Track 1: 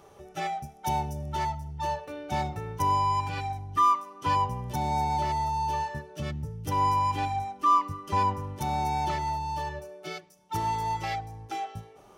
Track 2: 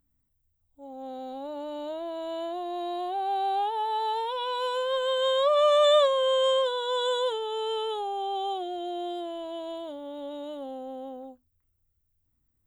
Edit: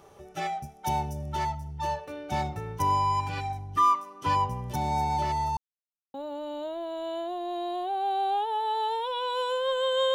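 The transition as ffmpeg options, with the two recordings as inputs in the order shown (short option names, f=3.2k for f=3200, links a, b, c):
-filter_complex "[0:a]apad=whole_dur=10.14,atrim=end=10.14,asplit=2[a][b];[a]atrim=end=5.57,asetpts=PTS-STARTPTS,afade=t=out:st=5.566:d=0.004:c=hsin[c];[b]atrim=start=5.57:end=6.14,asetpts=PTS-STARTPTS,volume=0[d];[1:a]atrim=start=1.39:end=5.39,asetpts=PTS-STARTPTS,afade=t=in:d=0.004:c=hsin[e];[c][d][e]concat=n=3:v=0:a=1"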